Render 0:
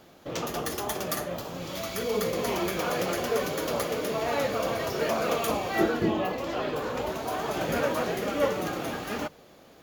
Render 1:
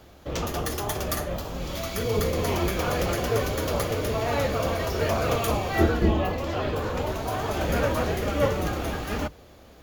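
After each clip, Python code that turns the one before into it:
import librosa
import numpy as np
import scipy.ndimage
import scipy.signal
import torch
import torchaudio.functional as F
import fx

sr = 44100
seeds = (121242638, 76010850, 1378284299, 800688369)

y = fx.octave_divider(x, sr, octaves=2, level_db=4.0)
y = y * librosa.db_to_amplitude(1.5)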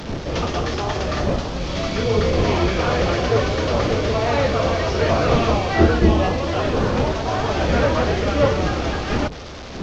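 y = fx.delta_mod(x, sr, bps=32000, step_db=-35.0)
y = fx.dmg_wind(y, sr, seeds[0], corner_hz=330.0, level_db=-37.0)
y = y * librosa.db_to_amplitude(6.5)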